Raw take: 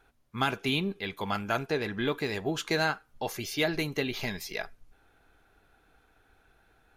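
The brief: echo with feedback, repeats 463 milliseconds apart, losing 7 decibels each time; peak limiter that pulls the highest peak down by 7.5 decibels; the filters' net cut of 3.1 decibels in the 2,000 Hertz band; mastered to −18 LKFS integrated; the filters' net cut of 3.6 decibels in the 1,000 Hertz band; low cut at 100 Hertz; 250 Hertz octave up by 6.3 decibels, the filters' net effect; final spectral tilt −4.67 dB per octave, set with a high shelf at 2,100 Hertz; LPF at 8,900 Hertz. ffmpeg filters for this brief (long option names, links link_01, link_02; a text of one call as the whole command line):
ffmpeg -i in.wav -af "highpass=100,lowpass=8900,equalizer=frequency=250:width_type=o:gain=8.5,equalizer=frequency=1000:width_type=o:gain=-5.5,equalizer=frequency=2000:width_type=o:gain=-5.5,highshelf=frequency=2100:gain=5,alimiter=limit=-20.5dB:level=0:latency=1,aecho=1:1:463|926|1389|1852|2315:0.447|0.201|0.0905|0.0407|0.0183,volume=13.5dB" out.wav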